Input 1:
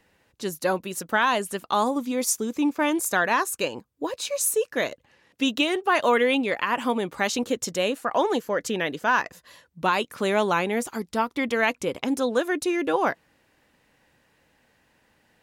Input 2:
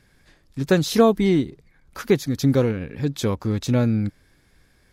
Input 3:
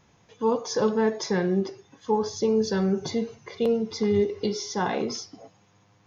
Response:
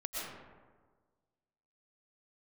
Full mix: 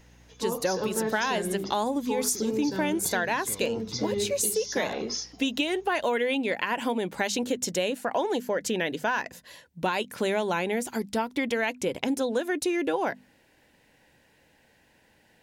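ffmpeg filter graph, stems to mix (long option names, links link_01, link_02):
-filter_complex "[0:a]equalizer=frequency=1200:width_type=o:width=0.24:gain=-13,volume=2.5dB[link_01];[1:a]acompressor=threshold=-23dB:ratio=6,adelay=250,volume=-15dB,asplit=2[link_02][link_03];[link_03]volume=-9.5dB[link_04];[2:a]aeval=exprs='val(0)+0.00316*(sin(2*PI*60*n/s)+sin(2*PI*2*60*n/s)/2+sin(2*PI*3*60*n/s)/3+sin(2*PI*4*60*n/s)/4+sin(2*PI*5*60*n/s)/5)':channel_layout=same,highshelf=frequency=3300:gain=10,volume=-4.5dB[link_05];[3:a]atrim=start_sample=2205[link_06];[link_04][link_06]afir=irnorm=-1:irlink=0[link_07];[link_01][link_02][link_05][link_07]amix=inputs=4:normalize=0,bandreject=frequency=50:width_type=h:width=6,bandreject=frequency=100:width_type=h:width=6,bandreject=frequency=150:width_type=h:width=6,bandreject=frequency=200:width_type=h:width=6,bandreject=frequency=250:width_type=h:width=6,acompressor=threshold=-24dB:ratio=4"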